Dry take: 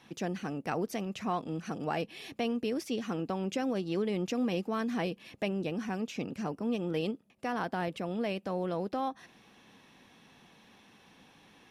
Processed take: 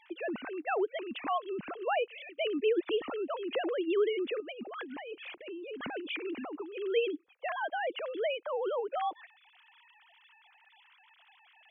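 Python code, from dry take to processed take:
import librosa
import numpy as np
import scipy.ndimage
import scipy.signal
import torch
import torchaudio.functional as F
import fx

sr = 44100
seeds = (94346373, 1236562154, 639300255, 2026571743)

y = fx.sine_speech(x, sr)
y = fx.high_shelf(y, sr, hz=2400.0, db=8.5)
y = fx.over_compress(y, sr, threshold_db=-41.0, ratio=-1.0, at=(4.4, 6.77))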